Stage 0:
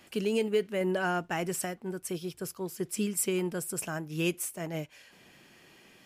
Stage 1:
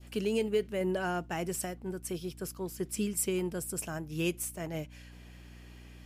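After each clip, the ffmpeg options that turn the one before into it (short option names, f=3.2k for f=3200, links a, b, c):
-af "aeval=exprs='val(0)+0.00398*(sin(2*PI*60*n/s)+sin(2*PI*2*60*n/s)/2+sin(2*PI*3*60*n/s)/3+sin(2*PI*4*60*n/s)/4+sin(2*PI*5*60*n/s)/5)':c=same,adynamicequalizer=threshold=0.00447:dfrequency=1600:dqfactor=0.71:tfrequency=1600:tqfactor=0.71:attack=5:release=100:ratio=0.375:range=2:mode=cutabove:tftype=bell,volume=-1.5dB"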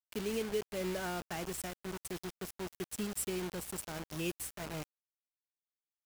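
-af "acrusher=bits=5:mix=0:aa=0.000001,volume=-6dB"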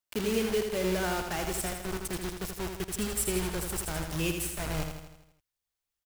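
-filter_complex "[0:a]asubboost=boost=5:cutoff=100,asplit=2[a][b];[b]aecho=0:1:81|162|243|324|405|486|567:0.501|0.276|0.152|0.0834|0.0459|0.0252|0.0139[c];[a][c]amix=inputs=2:normalize=0,volume=6.5dB"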